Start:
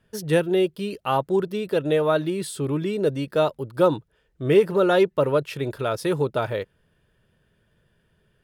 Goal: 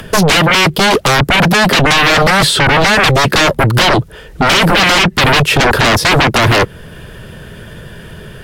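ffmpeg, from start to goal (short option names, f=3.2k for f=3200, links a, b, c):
-filter_complex "[0:a]asplit=2[a][b];[b]alimiter=limit=-15.5dB:level=0:latency=1,volume=3dB[c];[a][c]amix=inputs=2:normalize=0,acrossover=split=200|460|4500[d][e][f][g];[d]acompressor=threshold=-28dB:ratio=4[h];[e]acompressor=threshold=-19dB:ratio=4[i];[f]acompressor=threshold=-29dB:ratio=4[j];[g]acompressor=threshold=-50dB:ratio=4[k];[h][i][j][k]amix=inputs=4:normalize=0,aeval=exprs='0.376*sin(PI/2*8.91*val(0)/0.376)':c=same,acompressor=mode=upward:threshold=-29dB:ratio=2.5,volume=2.5dB" -ar 44100 -c:a libvorbis -b:a 64k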